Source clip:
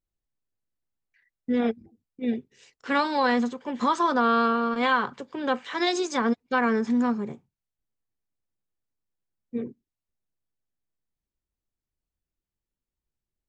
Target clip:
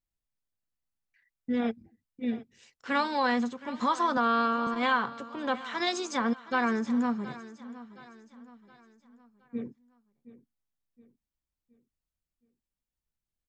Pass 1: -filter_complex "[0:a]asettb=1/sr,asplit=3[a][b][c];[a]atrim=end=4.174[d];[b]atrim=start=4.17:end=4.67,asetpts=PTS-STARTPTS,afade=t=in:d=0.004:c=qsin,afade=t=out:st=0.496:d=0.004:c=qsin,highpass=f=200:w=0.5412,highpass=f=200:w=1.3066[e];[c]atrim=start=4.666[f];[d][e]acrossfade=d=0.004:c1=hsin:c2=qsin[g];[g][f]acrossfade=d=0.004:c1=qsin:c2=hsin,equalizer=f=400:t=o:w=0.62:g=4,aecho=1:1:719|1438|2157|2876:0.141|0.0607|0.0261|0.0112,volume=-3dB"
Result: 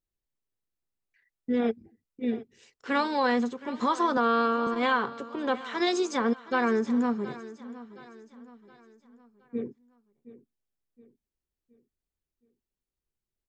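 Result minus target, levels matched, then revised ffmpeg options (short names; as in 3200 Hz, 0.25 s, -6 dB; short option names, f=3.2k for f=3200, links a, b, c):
500 Hz band +3.5 dB
-filter_complex "[0:a]asettb=1/sr,asplit=3[a][b][c];[a]atrim=end=4.174[d];[b]atrim=start=4.17:end=4.67,asetpts=PTS-STARTPTS,afade=t=in:d=0.004:c=qsin,afade=t=out:st=0.496:d=0.004:c=qsin,highpass=f=200:w=0.5412,highpass=f=200:w=1.3066[e];[c]atrim=start=4.666[f];[d][e]acrossfade=d=0.004:c1=hsin:c2=qsin[g];[g][f]acrossfade=d=0.004:c1=qsin:c2=hsin,equalizer=f=400:t=o:w=0.62:g=-6,aecho=1:1:719|1438|2157|2876:0.141|0.0607|0.0261|0.0112,volume=-3dB"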